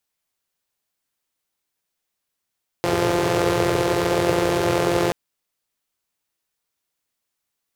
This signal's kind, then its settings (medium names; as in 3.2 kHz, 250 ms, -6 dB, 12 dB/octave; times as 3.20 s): four-cylinder engine model, steady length 2.28 s, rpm 5200, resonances 120/400 Hz